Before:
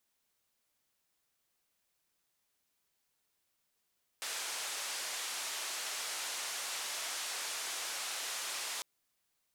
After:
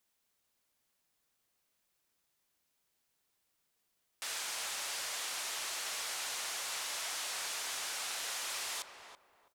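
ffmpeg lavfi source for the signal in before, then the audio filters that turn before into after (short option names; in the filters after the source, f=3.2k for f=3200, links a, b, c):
-f lavfi -i "anoisesrc=c=white:d=4.6:r=44100:seed=1,highpass=f=610,lowpass=f=8500,volume=-30.3dB"
-filter_complex "[0:a]acrossover=split=530|5600[a][b][c];[a]aeval=exprs='(mod(596*val(0)+1,2)-1)/596':c=same[d];[d][b][c]amix=inputs=3:normalize=0,asplit=2[e][f];[f]adelay=330,lowpass=f=1.1k:p=1,volume=-5dB,asplit=2[g][h];[h]adelay=330,lowpass=f=1.1k:p=1,volume=0.3,asplit=2[i][j];[j]adelay=330,lowpass=f=1.1k:p=1,volume=0.3,asplit=2[k][l];[l]adelay=330,lowpass=f=1.1k:p=1,volume=0.3[m];[e][g][i][k][m]amix=inputs=5:normalize=0"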